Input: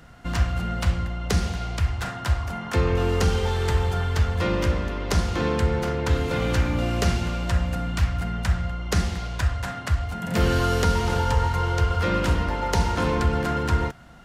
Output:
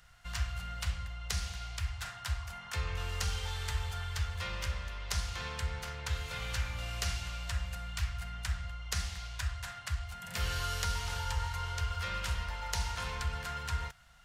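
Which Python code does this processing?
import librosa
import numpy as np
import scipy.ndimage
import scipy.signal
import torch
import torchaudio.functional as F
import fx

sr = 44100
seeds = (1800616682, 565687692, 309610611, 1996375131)

y = fx.tone_stack(x, sr, knobs='10-0-10')
y = F.gain(torch.from_numpy(y), -4.0).numpy()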